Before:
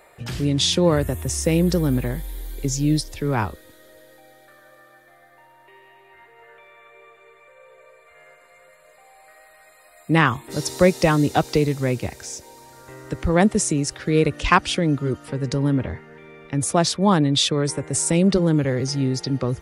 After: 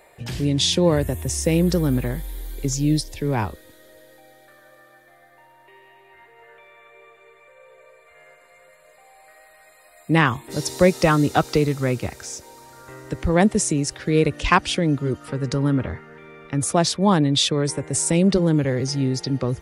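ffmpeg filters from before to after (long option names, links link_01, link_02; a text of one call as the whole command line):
ffmpeg -i in.wav -af "asetnsamples=nb_out_samples=441:pad=0,asendcmd='1.54 equalizer g 0.5;2.73 equalizer g -10.5;3.43 equalizer g -3;10.92 equalizer g 6.5;13 equalizer g -3;15.21 equalizer g 7;16.72 equalizer g -2.5',equalizer=frequency=1300:width_type=o:width=0.32:gain=-7.5" out.wav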